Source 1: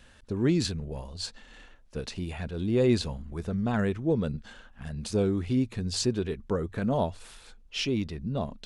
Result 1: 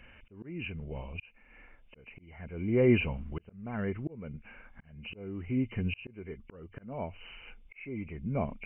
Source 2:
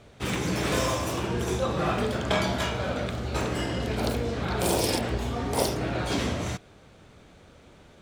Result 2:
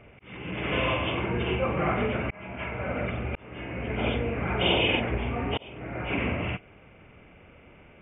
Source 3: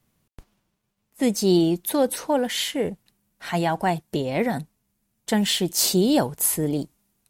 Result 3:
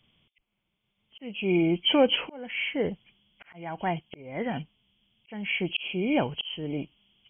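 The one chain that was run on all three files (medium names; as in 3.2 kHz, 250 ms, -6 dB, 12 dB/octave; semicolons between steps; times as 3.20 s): knee-point frequency compression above 2 kHz 4:1; slow attack 718 ms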